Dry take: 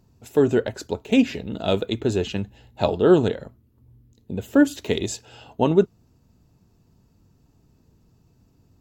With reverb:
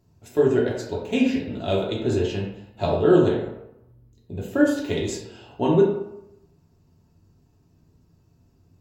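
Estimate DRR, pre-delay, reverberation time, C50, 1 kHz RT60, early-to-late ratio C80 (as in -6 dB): -4.0 dB, 3 ms, 0.85 s, 3.5 dB, 0.85 s, 6.5 dB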